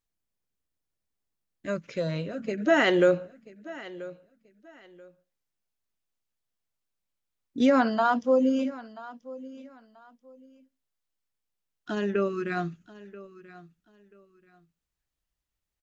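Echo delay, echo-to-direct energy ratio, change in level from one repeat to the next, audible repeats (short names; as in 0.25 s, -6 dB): 0.984 s, -18.0 dB, -12.0 dB, 2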